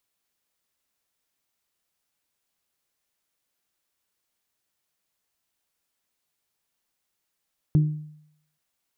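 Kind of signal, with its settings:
struck glass bell, length 0.83 s, lowest mode 152 Hz, decay 0.71 s, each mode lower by 12 dB, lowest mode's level −13 dB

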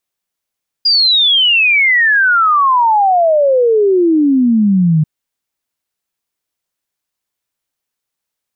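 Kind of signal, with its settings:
exponential sine sweep 4,900 Hz → 150 Hz 4.19 s −7.5 dBFS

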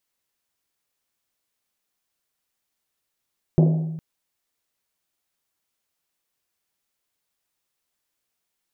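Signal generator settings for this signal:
drum after Risset length 0.41 s, pitch 160 Hz, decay 1.31 s, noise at 490 Hz, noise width 470 Hz, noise 15%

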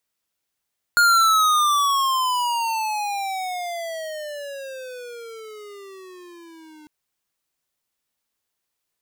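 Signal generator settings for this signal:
pitch glide with a swell square, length 5.90 s, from 1,430 Hz, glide −27 semitones, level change −31 dB, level −14.5 dB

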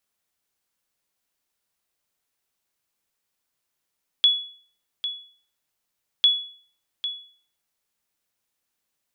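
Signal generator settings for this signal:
ping with an echo 3,390 Hz, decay 0.48 s, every 2.00 s, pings 2, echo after 0.80 s, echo −11.5 dB −10 dBFS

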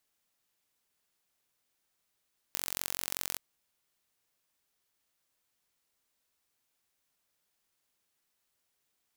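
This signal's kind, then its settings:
impulse train 45.3 per second, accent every 2, −5 dBFS 0.83 s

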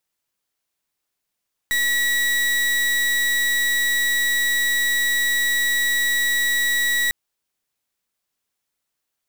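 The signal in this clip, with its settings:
pulse wave 1,930 Hz, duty 36% −20 dBFS 5.40 s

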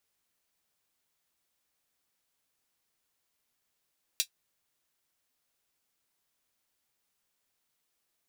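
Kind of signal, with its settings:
closed synth hi-hat, high-pass 3,400 Hz, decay 0.09 s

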